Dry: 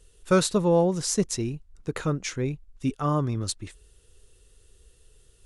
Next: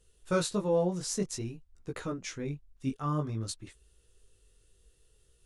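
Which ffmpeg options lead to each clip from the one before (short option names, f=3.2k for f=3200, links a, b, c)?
-af "flanger=delay=15.5:depth=6.9:speed=0.53,volume=-4.5dB"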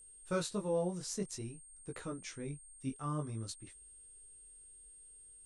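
-af "aeval=exprs='val(0)+0.00398*sin(2*PI*8600*n/s)':c=same,volume=-6.5dB"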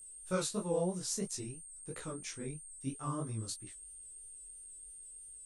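-af "highshelf=f=6.8k:g=9.5,flanger=delay=16:depth=7.6:speed=3,volume=3dB"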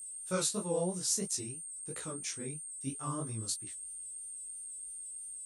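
-af "highpass=81,highshelf=f=4k:g=8"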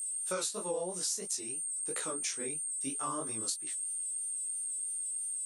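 -af "highpass=370,acompressor=threshold=-40dB:ratio=6,volume=8dB"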